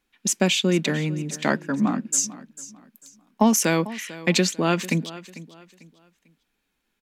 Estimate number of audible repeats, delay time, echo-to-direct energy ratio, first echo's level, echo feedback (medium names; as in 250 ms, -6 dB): 2, 446 ms, -16.5 dB, -17.0 dB, 31%